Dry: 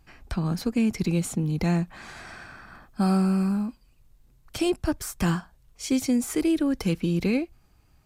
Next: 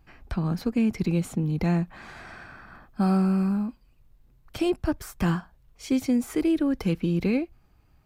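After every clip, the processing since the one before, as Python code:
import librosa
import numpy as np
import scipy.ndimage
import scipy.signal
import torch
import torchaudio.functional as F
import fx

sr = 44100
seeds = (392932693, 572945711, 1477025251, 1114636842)

y = fx.peak_eq(x, sr, hz=8200.0, db=-9.0, octaves=1.9)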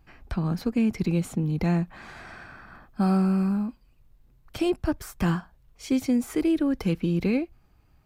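y = x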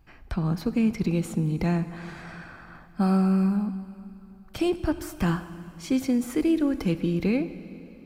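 y = fx.rev_plate(x, sr, seeds[0], rt60_s=3.1, hf_ratio=0.9, predelay_ms=0, drr_db=12.0)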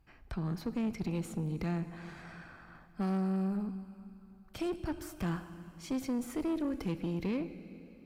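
y = fx.tube_stage(x, sr, drive_db=22.0, bias=0.4)
y = y * 10.0 ** (-6.5 / 20.0)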